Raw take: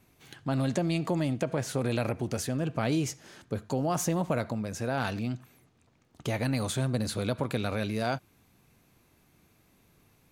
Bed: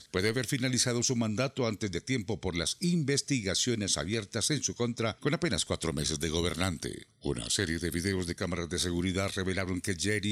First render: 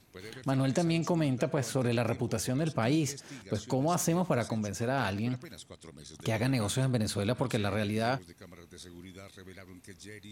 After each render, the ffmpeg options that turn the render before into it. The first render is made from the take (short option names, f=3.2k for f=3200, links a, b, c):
-filter_complex "[1:a]volume=-17.5dB[a];[0:a][a]amix=inputs=2:normalize=0"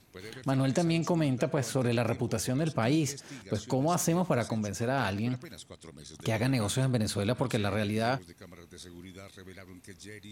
-af "volume=1dB"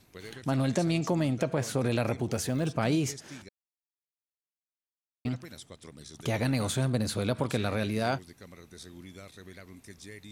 -filter_complex "[0:a]asettb=1/sr,asplit=3[a][b][c];[a]atrim=end=2.324[d];[b]atrim=start=2.32:end=2.74,asetpts=PTS-STARTPTS,afade=t=in:d=0.004:c=qsin,afade=t=out:st=0.416:d=0.004:c=qsin,acrusher=bits=9:mode=log:mix=0:aa=0.000001[e];[c]atrim=start=2.736[f];[d][e]acrossfade=d=0.004:c1=hsin:c2=qsin[g];[g][f]acrossfade=d=0.004:c1=qsin:c2=hsin,asplit=3[h][i][j];[h]atrim=end=3.49,asetpts=PTS-STARTPTS,afade=t=out:st=3.486:d=0.004:c=hsin[k];[i]atrim=start=3.49:end=5.25,asetpts=PTS-STARTPTS,volume=0[l];[j]atrim=start=5.25,asetpts=PTS-STARTPTS,afade=t=in:d=0.004:c=hsin[m];[k][l][m]concat=n=3:v=0:a=1"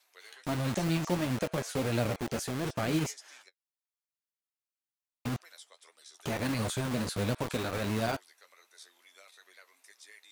-filter_complex "[0:a]flanger=delay=8.2:depth=5.1:regen=33:speed=1.5:shape=triangular,acrossover=split=600|1100[a][b][c];[a]acrusher=bits=5:mix=0:aa=0.000001[d];[d][b][c]amix=inputs=3:normalize=0"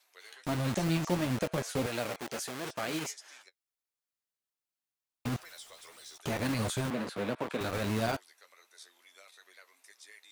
-filter_complex "[0:a]asettb=1/sr,asplit=3[a][b][c];[a]atrim=end=1.864[d];[b]atrim=start=1.86:end=3.21,asetpts=PTS-STARTPTS,afade=t=in:d=0.004:c=qsin,afade=t=out:st=1.346:d=0.004:c=qsin,highpass=f=590:p=1[e];[c]atrim=start=3.206[f];[d][e]acrossfade=d=0.004:c1=hsin:c2=qsin[g];[g][f]acrossfade=d=0.004:c1=qsin:c2=hsin,asettb=1/sr,asplit=3[h][i][j];[h]atrim=end=5.324[k];[i]atrim=start=5.32:end=6.18,asetpts=PTS-STARTPTS,afade=t=in:d=0.004:c=qsin,afade=t=out:st=0.856:d=0.004:c=qsin,aeval=exprs='val(0)+0.5*0.00299*sgn(val(0))':c=same[l];[j]atrim=start=6.176[m];[k][l]acrossfade=d=0.004:c1=hsin:c2=qsin[n];[n][m]acrossfade=d=0.004:c1=qsin:c2=hsin,asettb=1/sr,asplit=3[o][p][q];[o]atrim=end=6.904[r];[p]atrim=start=6.9:end=7.61,asetpts=PTS-STARTPTS,afade=t=in:d=0.004:c=qsin,afade=t=out:st=0.706:d=0.004:c=qsin,acrossover=split=180 3200:gain=0.112 1 0.251[s][t][u];[s][t][u]amix=inputs=3:normalize=0[v];[q]atrim=start=7.606[w];[r][v]acrossfade=d=0.004:c1=hsin:c2=qsin[x];[x][w]acrossfade=d=0.004:c1=qsin:c2=hsin"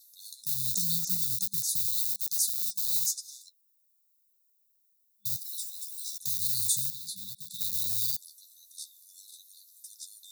-af "afftfilt=real='re*(1-between(b*sr/4096,200,3500))':imag='im*(1-between(b*sr/4096,200,3500))':win_size=4096:overlap=0.75,aemphasis=mode=production:type=riaa"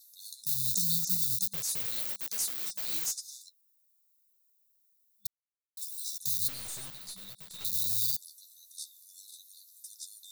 -filter_complex "[0:a]asplit=3[a][b][c];[a]afade=t=out:st=1.49:d=0.02[d];[b]aeval=exprs='(tanh(20*val(0)+0.05)-tanh(0.05))/20':c=same,afade=t=in:st=1.49:d=0.02,afade=t=out:st=3.36:d=0.02[e];[c]afade=t=in:st=3.36:d=0.02[f];[d][e][f]amix=inputs=3:normalize=0,asettb=1/sr,asplit=3[g][h][i];[g]atrim=end=6.484[j];[h]atrim=start=6.48:end=7.65,asetpts=PTS-STARTPTS,afade=t=in:d=0.004:c=qsin,afade=t=out:st=1.166:d=0.004:c=qsin,aeval=exprs='(tanh(79.4*val(0)+0.35)-tanh(0.35))/79.4':c=same[k];[i]atrim=start=7.646[l];[j][k]acrossfade=d=0.004:c1=hsin:c2=qsin[m];[m][l]acrossfade=d=0.004:c1=qsin:c2=hsin,asplit=3[n][o][p];[n]atrim=end=5.27,asetpts=PTS-STARTPTS,afade=t=out:st=5.266:d=0.004:c=hsin[q];[o]atrim=start=5.27:end=5.77,asetpts=PTS-STARTPTS,volume=0[r];[p]atrim=start=5.77,asetpts=PTS-STARTPTS,afade=t=in:d=0.004:c=hsin[s];[q][r][s]concat=n=3:v=0:a=1"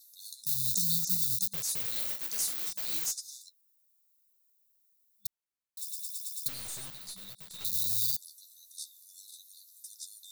-filter_complex "[0:a]asettb=1/sr,asplit=3[a][b][c];[a]atrim=end=1.914[d];[b]atrim=start=1.91:end=2.73,asetpts=PTS-STARTPTS,afade=t=in:d=0.004:c=qsin,afade=t=out:st=0.816:d=0.004:c=qsin,asplit=2[e][f];[f]adelay=45,volume=-7dB[g];[e][g]amix=inputs=2:normalize=0,atrim=end_sample=36162[h];[c]atrim=start=2.726[i];[d][h]acrossfade=d=0.004:c1=hsin:c2=qsin[j];[j][i]acrossfade=d=0.004:c1=qsin:c2=hsin,asplit=7[k][l][m][n][o][p][q];[k]atrim=end=5.912[r];[l]atrim=start=5.798:end=5.912[s];[m]atrim=start=5.798:end=5.912[t];[n]atrim=start=5.798:end=5.912[u];[o]atrim=start=5.798:end=5.912[v];[p]atrim=start=5.798:end=5.912[w];[q]atrim=start=6.458[x];[r][s]acrossfade=d=0.004:c1=hsin:c2=hsin[y];[y][t]acrossfade=d=0.004:c1=hsin:c2=hsin[z];[z][u]acrossfade=d=0.004:c1=hsin:c2=hsin[aa];[aa][v]acrossfade=d=0.004:c1=hsin:c2=hsin[ab];[ab][w]acrossfade=d=0.004:c1=hsin:c2=hsin[ac];[ac][x]acrossfade=d=0.004:c1=hsin:c2=hsin"